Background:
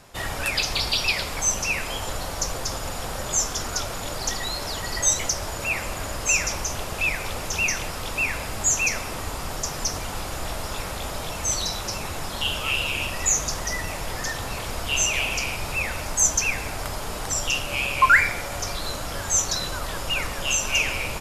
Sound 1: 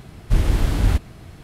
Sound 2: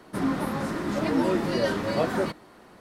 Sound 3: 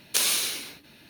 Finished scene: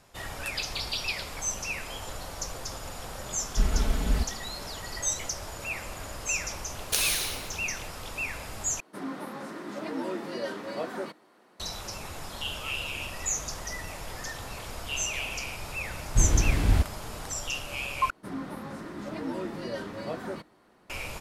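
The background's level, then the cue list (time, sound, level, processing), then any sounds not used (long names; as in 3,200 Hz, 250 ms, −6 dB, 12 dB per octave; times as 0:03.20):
background −8.5 dB
0:03.26: mix in 1 −10 dB + comb filter 4.6 ms, depth 89%
0:06.78: mix in 3 −3 dB
0:08.80: overwrite with 2 −8 dB + high-pass filter 240 Hz
0:15.85: mix in 1 −4.5 dB
0:18.10: overwrite with 2 −10 dB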